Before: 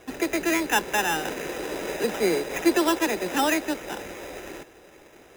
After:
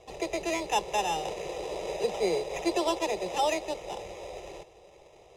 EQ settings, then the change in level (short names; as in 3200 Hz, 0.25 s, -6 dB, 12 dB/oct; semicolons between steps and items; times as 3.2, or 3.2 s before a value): air absorption 74 m; fixed phaser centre 640 Hz, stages 4; 0.0 dB